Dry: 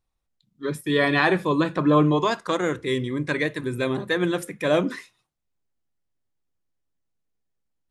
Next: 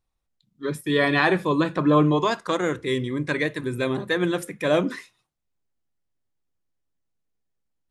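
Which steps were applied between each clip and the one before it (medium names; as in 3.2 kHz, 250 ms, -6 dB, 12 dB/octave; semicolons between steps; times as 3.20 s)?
no audible change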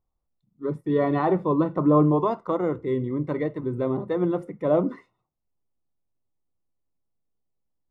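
Savitzky-Golay filter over 65 samples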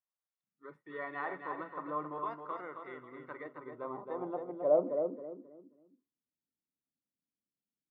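feedback delay 268 ms, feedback 31%, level -6 dB; band-pass sweep 1.7 kHz -> 240 Hz, 3.09–6.24 s; trim -3.5 dB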